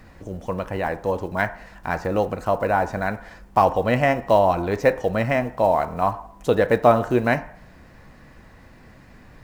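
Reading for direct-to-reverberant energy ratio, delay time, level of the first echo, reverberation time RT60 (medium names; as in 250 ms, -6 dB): 10.0 dB, no echo, no echo, 0.60 s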